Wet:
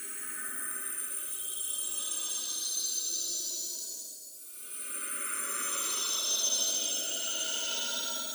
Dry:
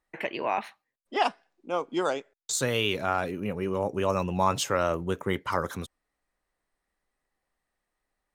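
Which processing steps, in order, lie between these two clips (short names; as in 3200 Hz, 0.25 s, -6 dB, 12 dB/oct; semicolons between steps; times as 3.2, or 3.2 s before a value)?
spectrum mirrored in octaves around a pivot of 1900 Hz; Paulstretch 13×, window 0.10 s, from 3.59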